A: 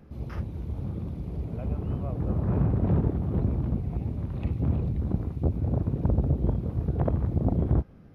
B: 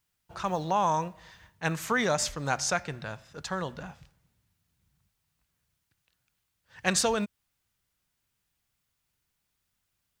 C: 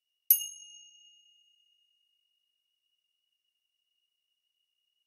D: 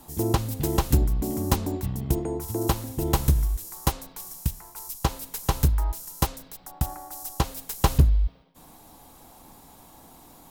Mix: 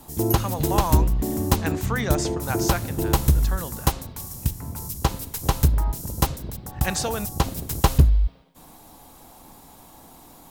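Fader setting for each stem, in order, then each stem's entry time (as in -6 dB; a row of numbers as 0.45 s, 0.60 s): -9.0 dB, -1.0 dB, -7.5 dB, +2.5 dB; 0.00 s, 0.00 s, 0.00 s, 0.00 s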